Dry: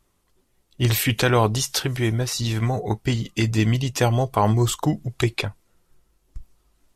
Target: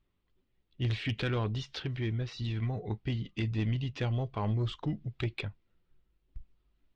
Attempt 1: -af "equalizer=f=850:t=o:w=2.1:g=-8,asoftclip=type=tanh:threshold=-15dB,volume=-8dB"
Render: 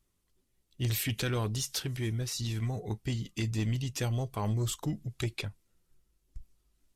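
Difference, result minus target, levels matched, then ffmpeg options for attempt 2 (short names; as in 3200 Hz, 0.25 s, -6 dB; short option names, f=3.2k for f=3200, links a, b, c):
4000 Hz band +2.5 dB
-af "lowpass=f=3.6k:w=0.5412,lowpass=f=3.6k:w=1.3066,equalizer=f=850:t=o:w=2.1:g=-8,asoftclip=type=tanh:threshold=-15dB,volume=-8dB"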